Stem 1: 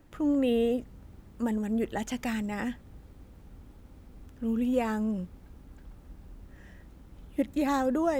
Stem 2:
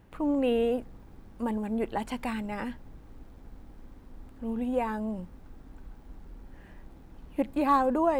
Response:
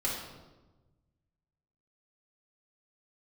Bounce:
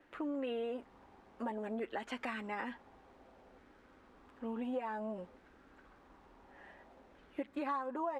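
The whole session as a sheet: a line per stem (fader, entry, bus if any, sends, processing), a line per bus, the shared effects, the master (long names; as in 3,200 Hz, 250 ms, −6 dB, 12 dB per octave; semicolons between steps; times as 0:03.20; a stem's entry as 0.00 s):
−1.5 dB, 0.00 s, no send, three-way crossover with the lows and the highs turned down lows −20 dB, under 290 Hz, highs −24 dB, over 3,300 Hz
−6.0 dB, 8.1 ms, no send, low-pass filter 7,100 Hz 12 dB per octave; auto-filter high-pass saw down 0.56 Hz 520–1,700 Hz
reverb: not used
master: downward compressor 5 to 1, threshold −36 dBFS, peak gain reduction 15 dB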